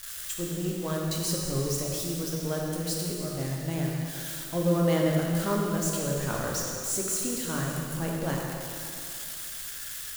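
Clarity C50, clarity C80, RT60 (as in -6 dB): 0.0 dB, 1.0 dB, 2.6 s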